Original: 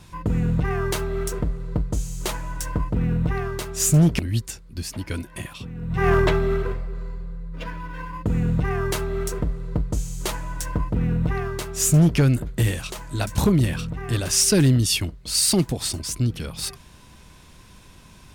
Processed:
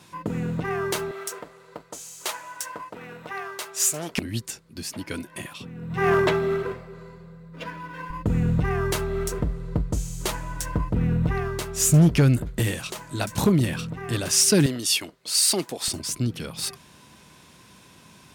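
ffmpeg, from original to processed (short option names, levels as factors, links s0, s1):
-af "asetnsamples=n=441:p=0,asendcmd='1.11 highpass f 650;4.18 highpass f 170;8.1 highpass f 45;12.59 highpass f 130;14.66 highpass f 390;15.88 highpass f 140',highpass=200"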